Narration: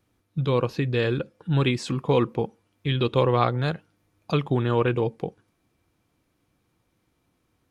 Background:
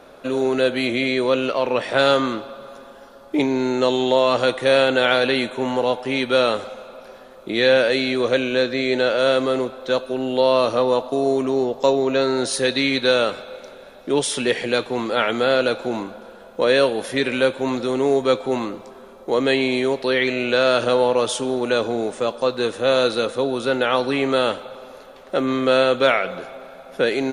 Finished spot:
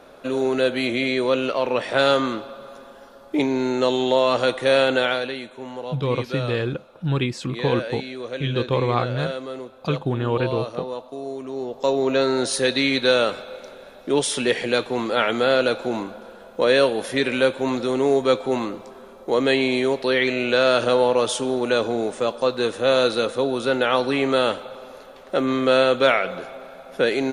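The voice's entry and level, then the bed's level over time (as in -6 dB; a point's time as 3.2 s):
5.55 s, -0.5 dB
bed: 4.97 s -1.5 dB
5.39 s -12 dB
11.42 s -12 dB
12.06 s -0.5 dB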